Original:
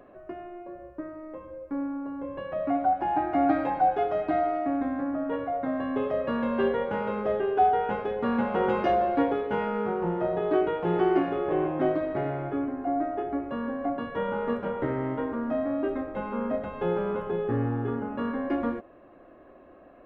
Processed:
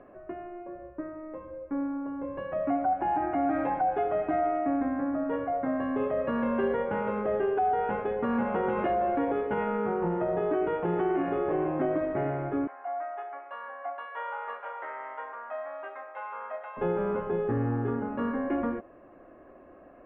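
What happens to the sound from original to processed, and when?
12.67–16.77 s: high-pass 740 Hz 24 dB/octave
whole clip: low-pass 2.6 kHz 24 dB/octave; peak limiter -19.5 dBFS

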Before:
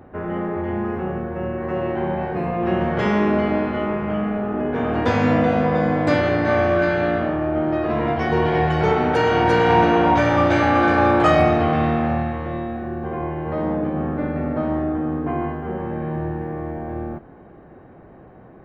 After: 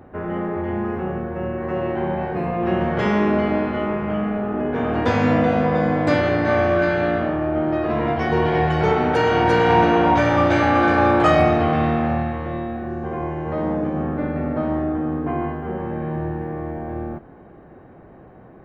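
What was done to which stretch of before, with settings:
12.88–14.03 s: careless resampling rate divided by 3×, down none, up filtered

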